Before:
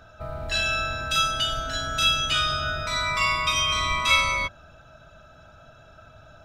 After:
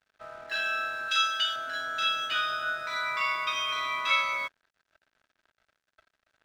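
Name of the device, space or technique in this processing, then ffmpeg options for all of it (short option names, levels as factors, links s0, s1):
pocket radio on a weak battery: -filter_complex "[0:a]asettb=1/sr,asplit=3[s0][s1][s2];[s0]atrim=end=1.084[s3];[s1]atrim=start=1.08:end=1.56,asetpts=PTS-STARTPTS,afade=t=in:d=0.004:c=qsin,afade=t=out:st=0.476:d=0.004:c=qsin,tiltshelf=f=1400:g=-8[s4];[s2]atrim=start=1.556[s5];[s3][s4]acrossfade=d=0.004:c1=hsin:c2=qsin[s6];[s6][s5]acrossfade=d=0.004:c1=qsin:c2=hsin,highpass=390,lowpass=4000,aeval=exprs='sgn(val(0))*max(abs(val(0))-0.00447,0)':c=same,equalizer=f=1600:t=o:w=0.47:g=8.5,volume=0.501"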